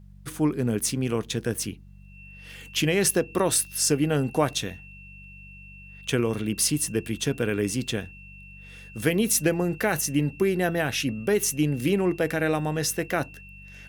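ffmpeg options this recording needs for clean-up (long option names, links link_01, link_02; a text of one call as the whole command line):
ffmpeg -i in.wav -af "bandreject=frequency=48.1:width_type=h:width=4,bandreject=frequency=96.2:width_type=h:width=4,bandreject=frequency=144.3:width_type=h:width=4,bandreject=frequency=192.4:width_type=h:width=4,bandreject=frequency=2700:width=30" out.wav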